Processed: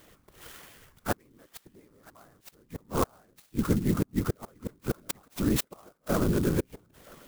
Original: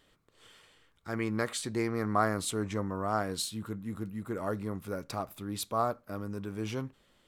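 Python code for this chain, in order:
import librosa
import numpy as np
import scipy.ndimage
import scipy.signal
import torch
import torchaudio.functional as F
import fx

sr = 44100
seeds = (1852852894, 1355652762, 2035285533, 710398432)

p1 = fx.dynamic_eq(x, sr, hz=310.0, q=1.1, threshold_db=-45.0, ratio=4.0, max_db=6, at=(1.28, 1.8))
p2 = fx.rider(p1, sr, range_db=3, speed_s=2.0)
p3 = p1 + (p2 * 10.0 ** (0.0 / 20.0))
p4 = fx.gate_flip(p3, sr, shuts_db=-19.0, range_db=-39)
p5 = p4 + fx.echo_thinned(p4, sr, ms=974, feedback_pct=24, hz=780.0, wet_db=-21.0, dry=0)
p6 = fx.whisperise(p5, sr, seeds[0])
p7 = fx.clock_jitter(p6, sr, seeds[1], jitter_ms=0.062)
y = p7 * 10.0 ** (5.5 / 20.0)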